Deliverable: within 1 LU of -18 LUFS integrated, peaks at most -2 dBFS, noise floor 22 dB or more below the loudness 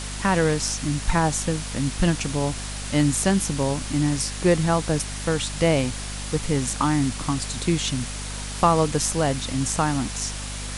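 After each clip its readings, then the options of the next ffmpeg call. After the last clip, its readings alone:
hum 50 Hz; harmonics up to 250 Hz; hum level -31 dBFS; noise floor -32 dBFS; noise floor target -46 dBFS; loudness -23.5 LUFS; peak -5.0 dBFS; loudness target -18.0 LUFS
-> -af "bandreject=f=50:t=h:w=6,bandreject=f=100:t=h:w=6,bandreject=f=150:t=h:w=6,bandreject=f=200:t=h:w=6,bandreject=f=250:t=h:w=6"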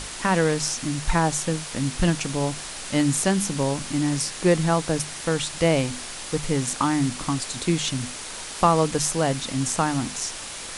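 hum none; noise floor -36 dBFS; noise floor target -46 dBFS
-> -af "afftdn=nr=10:nf=-36"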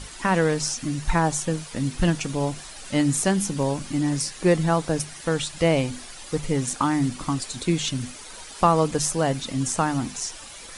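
noise floor -41 dBFS; noise floor target -47 dBFS
-> -af "afftdn=nr=6:nf=-41"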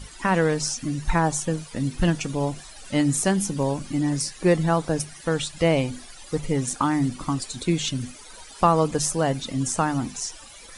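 noise floor -44 dBFS; noise floor target -47 dBFS
-> -af "afftdn=nr=6:nf=-44"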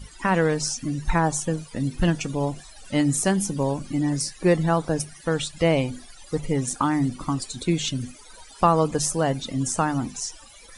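noise floor -47 dBFS; loudness -24.5 LUFS; peak -5.5 dBFS; loudness target -18.0 LUFS
-> -af "volume=6.5dB,alimiter=limit=-2dB:level=0:latency=1"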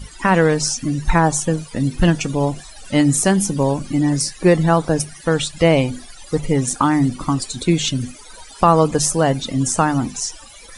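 loudness -18.0 LUFS; peak -2.0 dBFS; noise floor -40 dBFS

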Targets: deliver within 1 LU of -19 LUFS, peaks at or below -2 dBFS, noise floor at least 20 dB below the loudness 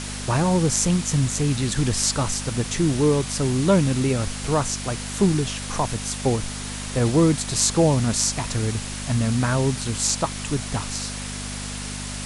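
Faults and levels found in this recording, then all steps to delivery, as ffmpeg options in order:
hum 50 Hz; harmonics up to 250 Hz; hum level -32 dBFS; noise floor -32 dBFS; noise floor target -43 dBFS; loudness -22.5 LUFS; peak -3.0 dBFS; loudness target -19.0 LUFS
-> -af "bandreject=f=50:t=h:w=4,bandreject=f=100:t=h:w=4,bandreject=f=150:t=h:w=4,bandreject=f=200:t=h:w=4,bandreject=f=250:t=h:w=4"
-af "afftdn=nr=11:nf=-32"
-af "volume=3.5dB,alimiter=limit=-2dB:level=0:latency=1"

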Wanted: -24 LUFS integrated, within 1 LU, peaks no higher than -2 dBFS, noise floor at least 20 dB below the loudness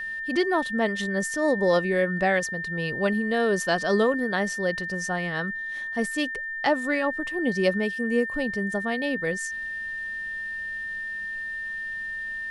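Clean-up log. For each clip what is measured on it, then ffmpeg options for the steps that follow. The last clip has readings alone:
steady tone 1800 Hz; tone level -30 dBFS; loudness -26.0 LUFS; peak -9.0 dBFS; loudness target -24.0 LUFS
-> -af "bandreject=f=1.8k:w=30"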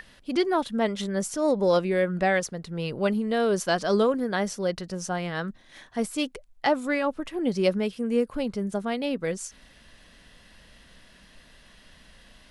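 steady tone none; loudness -27.0 LUFS; peak -10.0 dBFS; loudness target -24.0 LUFS
-> -af "volume=3dB"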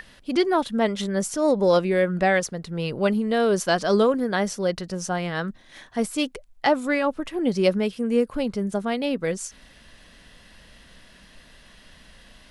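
loudness -24.0 LUFS; peak -7.0 dBFS; noise floor -52 dBFS

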